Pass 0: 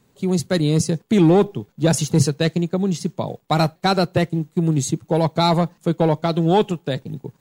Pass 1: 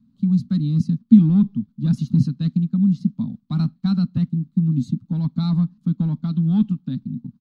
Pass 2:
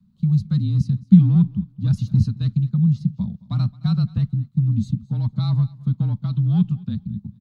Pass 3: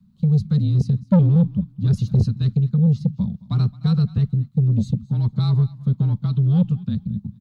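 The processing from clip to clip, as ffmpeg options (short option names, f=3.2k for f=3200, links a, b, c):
-af "firequalizer=gain_entry='entry(140,0);entry(240,14);entry(360,-28);entry(570,-29);entry(1200,-12);entry(1900,-23);entry(4100,-11);entry(7200,-27)':delay=0.05:min_phase=1,volume=-2.5dB"
-af "afreqshift=-34,aecho=1:1:218|436:0.0794|0.0175"
-af "asoftclip=type=tanh:threshold=-13dB,volume=3dB"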